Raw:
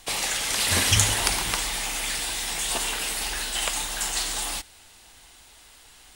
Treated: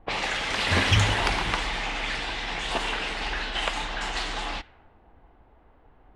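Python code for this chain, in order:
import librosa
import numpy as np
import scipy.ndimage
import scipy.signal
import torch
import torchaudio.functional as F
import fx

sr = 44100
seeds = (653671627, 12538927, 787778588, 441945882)

p1 = fx.env_lowpass(x, sr, base_hz=630.0, full_db=-23.0)
p2 = scipy.signal.sosfilt(scipy.signal.butter(2, 2800.0, 'lowpass', fs=sr, output='sos'), p1)
p3 = np.clip(p2, -10.0 ** (-19.5 / 20.0), 10.0 ** (-19.5 / 20.0))
y = p2 + (p3 * librosa.db_to_amplitude(-6.0))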